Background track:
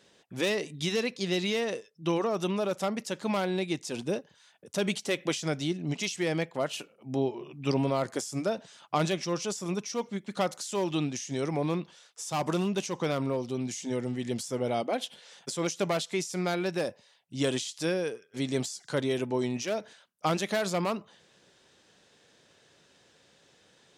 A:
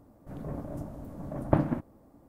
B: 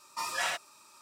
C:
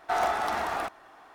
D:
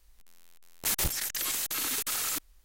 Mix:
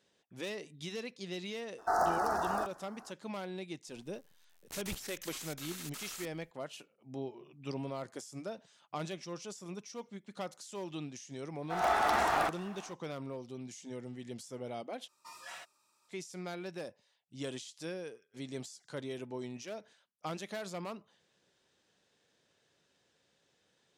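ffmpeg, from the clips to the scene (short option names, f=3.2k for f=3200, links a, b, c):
-filter_complex "[3:a]asplit=2[a][b];[0:a]volume=-12dB[c];[a]asuperstop=centerf=2800:order=8:qfactor=0.93[d];[4:a]acrossover=split=9000[e][f];[f]acompressor=threshold=-38dB:ratio=4:attack=1:release=60[g];[e][g]amix=inputs=2:normalize=0[h];[b]dynaudnorm=f=160:g=3:m=15dB[i];[c]asplit=2[j][k];[j]atrim=end=15.084[l];[2:a]atrim=end=1.01,asetpts=PTS-STARTPTS,volume=-16dB[m];[k]atrim=start=16.086[n];[d]atrim=end=1.34,asetpts=PTS-STARTPTS,volume=-3dB,afade=t=in:d=0.004:c=hsin,afade=t=out:st=1.336:d=0.004:c=hsin,adelay=1780[o];[h]atrim=end=2.64,asetpts=PTS-STARTPTS,volume=-12.5dB,afade=t=in:d=0.004:c=hsin,afade=t=out:st=2.636:d=0.004:c=hsin,adelay=3870[p];[i]atrim=end=1.34,asetpts=PTS-STARTPTS,volume=-13dB,afade=t=in:d=0.004:c=hsin,afade=t=out:st=1.336:d=0.004:c=hsin,adelay=11610[q];[l][m]acrossfade=d=0.004:c1=hsin:c2=hsin[r];[r][n]acrossfade=d=0.004:c1=hsin:c2=hsin[s];[s][o][p][q]amix=inputs=4:normalize=0"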